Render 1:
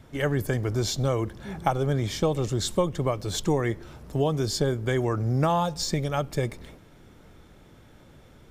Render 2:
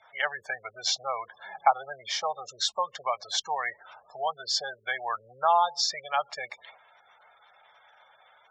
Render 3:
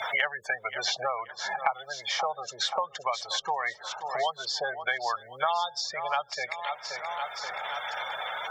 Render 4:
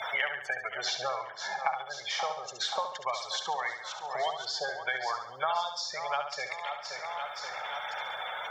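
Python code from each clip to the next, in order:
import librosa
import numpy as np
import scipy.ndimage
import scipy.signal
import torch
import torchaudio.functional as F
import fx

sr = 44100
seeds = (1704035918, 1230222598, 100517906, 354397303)

y1 = fx.spec_gate(x, sr, threshold_db=-25, keep='strong')
y1 = scipy.signal.sosfilt(scipy.signal.ellip(3, 1.0, 40, [740.0, 5900.0], 'bandpass', fs=sr, output='sos'), y1)
y1 = y1 * 10.0 ** (5.0 / 20.0)
y2 = fx.echo_feedback(y1, sr, ms=528, feedback_pct=41, wet_db=-18.0)
y2 = fx.band_squash(y2, sr, depth_pct=100)
y3 = fx.echo_feedback(y2, sr, ms=70, feedback_pct=47, wet_db=-7.5)
y3 = y3 * 10.0 ** (-3.5 / 20.0)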